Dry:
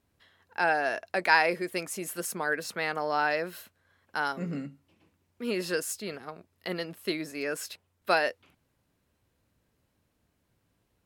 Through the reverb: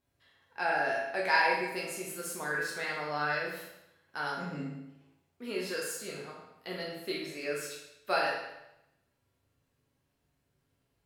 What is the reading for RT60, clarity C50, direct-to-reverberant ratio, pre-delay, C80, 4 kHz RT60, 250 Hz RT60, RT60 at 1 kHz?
0.85 s, 2.0 dB, −4.5 dB, 7 ms, 4.5 dB, 0.80 s, 0.85 s, 0.85 s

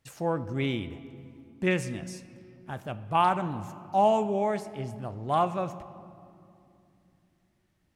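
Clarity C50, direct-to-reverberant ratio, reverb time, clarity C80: 14.0 dB, 12.0 dB, 2.7 s, 15.0 dB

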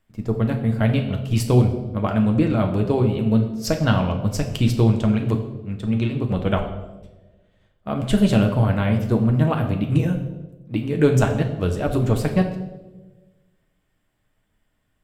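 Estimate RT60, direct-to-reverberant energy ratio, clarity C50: 1.2 s, 2.5 dB, 9.0 dB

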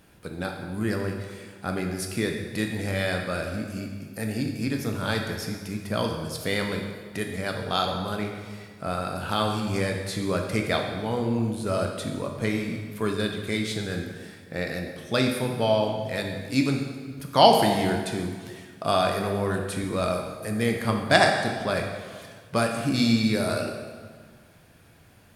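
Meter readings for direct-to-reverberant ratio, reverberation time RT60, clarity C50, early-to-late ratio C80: 2.0 dB, 1.6 s, 4.5 dB, 6.0 dB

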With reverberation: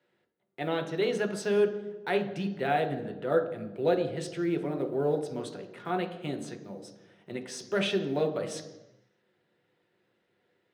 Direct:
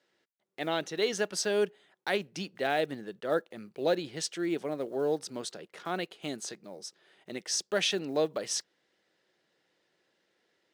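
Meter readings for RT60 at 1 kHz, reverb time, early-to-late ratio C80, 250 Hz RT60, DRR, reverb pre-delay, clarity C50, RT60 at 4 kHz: 1.0 s, 1.1 s, 12.0 dB, 1.4 s, 3.5 dB, 3 ms, 9.5 dB, 0.95 s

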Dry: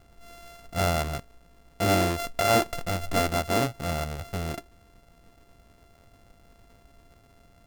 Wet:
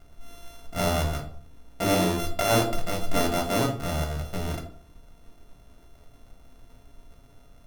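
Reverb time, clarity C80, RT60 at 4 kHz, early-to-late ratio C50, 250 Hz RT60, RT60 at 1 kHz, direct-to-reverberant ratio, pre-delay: 0.55 s, 14.0 dB, 0.35 s, 9.5 dB, 0.60 s, 0.50 s, 1.0 dB, 3 ms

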